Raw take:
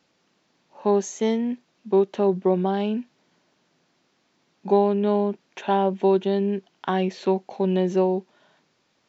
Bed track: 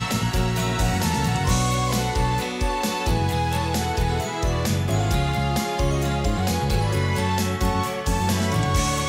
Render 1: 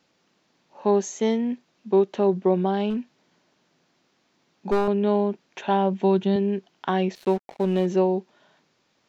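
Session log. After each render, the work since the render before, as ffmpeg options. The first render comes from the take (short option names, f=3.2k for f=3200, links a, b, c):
-filter_complex "[0:a]asettb=1/sr,asplit=3[a][b][c];[a]atrim=end=2.904[d];[b]atrim=start=2.9:end=4.88,asetpts=PTS-STARTPTS,afade=t=in:d=0.004:c=qsin,afade=t=out:st=1.976:d=0.004:c=qsin,aeval=exprs='clip(val(0),-1,0.0891)':c=same[e];[c]atrim=start=4.876[f];[d][e]acrossfade=d=0.004:c1=hsin:c2=qsin[g];[g][f]acrossfade=d=0.004:c1=qsin:c2=hsin,asettb=1/sr,asplit=3[h][i][j];[h]atrim=end=5.444[k];[i]atrim=start=5.44:end=6.36,asetpts=PTS-STARTPTS,afade=t=in:d=0.004:c=qsin,afade=t=out:st=0.916:d=0.004:c=qsin,asubboost=boost=12:cutoff=180[l];[j]atrim=start=6.356[m];[k][l]acrossfade=d=0.004:c1=hsin:c2=qsin[n];[n][m]acrossfade=d=0.004:c1=qsin:c2=hsin,asettb=1/sr,asplit=3[o][p][q];[o]atrim=end=7.154[r];[p]atrim=start=7.15:end=7.86,asetpts=PTS-STARTPTS,afade=t=in:d=0.004:c=qsin,afade=t=out:st=0.706:d=0.004:c=qsin,aeval=exprs='sgn(val(0))*max(abs(val(0))-0.01,0)':c=same[s];[q]atrim=start=7.856[t];[r][s]acrossfade=d=0.004:c1=hsin:c2=qsin[u];[u][t]acrossfade=d=0.004:c1=qsin:c2=hsin"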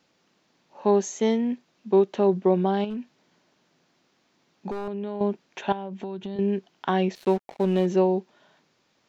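-filter_complex "[0:a]asettb=1/sr,asplit=3[a][b][c];[a]atrim=end=2.844[d];[b]atrim=start=2.84:end=5.21,asetpts=PTS-STARTPTS,afade=t=in:d=0.004:c=qsin,afade=t=out:st=2.366:d=0.004:c=qsin,acompressor=threshold=-28dB:ratio=6:attack=3.2:release=140:knee=1:detection=peak[e];[c]atrim=start=5.206[f];[d][e]acrossfade=d=0.004:c1=hsin:c2=qsin[g];[g][f]acrossfade=d=0.004:c1=qsin:c2=hsin,asettb=1/sr,asplit=3[h][i][j];[h]atrim=end=5.724[k];[i]atrim=start=5.72:end=6.39,asetpts=PTS-STARTPTS,afade=t=in:d=0.004:c=qsin,afade=t=out:st=0.666:d=0.004:c=qsin,acompressor=threshold=-31dB:ratio=5:attack=3.2:release=140:knee=1:detection=peak[l];[j]atrim=start=6.386[m];[k][l]acrossfade=d=0.004:c1=hsin:c2=qsin[n];[n][m]acrossfade=d=0.004:c1=qsin:c2=hsin"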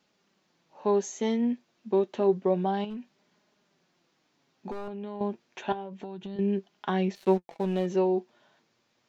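-af "flanger=delay=4.8:depth=3.9:regen=54:speed=0.29:shape=sinusoidal"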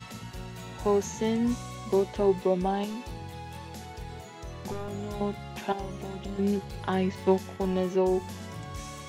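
-filter_complex "[1:a]volume=-18dB[a];[0:a][a]amix=inputs=2:normalize=0"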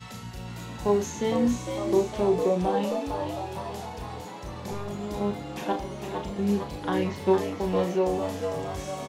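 -filter_complex "[0:a]asplit=2[a][b];[b]adelay=34,volume=-6dB[c];[a][c]amix=inputs=2:normalize=0,asplit=7[d][e][f][g][h][i][j];[e]adelay=456,afreqshift=100,volume=-6.5dB[k];[f]adelay=912,afreqshift=200,volume=-12.2dB[l];[g]adelay=1368,afreqshift=300,volume=-17.9dB[m];[h]adelay=1824,afreqshift=400,volume=-23.5dB[n];[i]adelay=2280,afreqshift=500,volume=-29.2dB[o];[j]adelay=2736,afreqshift=600,volume=-34.9dB[p];[d][k][l][m][n][o][p]amix=inputs=7:normalize=0"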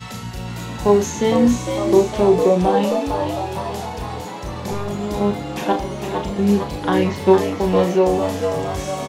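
-af "volume=9dB"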